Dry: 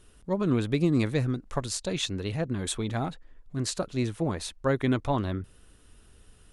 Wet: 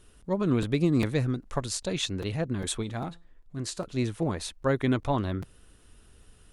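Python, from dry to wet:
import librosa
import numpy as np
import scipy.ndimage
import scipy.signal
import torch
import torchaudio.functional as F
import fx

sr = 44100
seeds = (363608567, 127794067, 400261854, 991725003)

y = fx.comb_fb(x, sr, f0_hz=170.0, decay_s=0.36, harmonics='all', damping=0.0, mix_pct=40, at=(2.82, 3.84), fade=0.02)
y = fx.buffer_crackle(y, sr, first_s=0.62, period_s=0.4, block=256, kind='repeat')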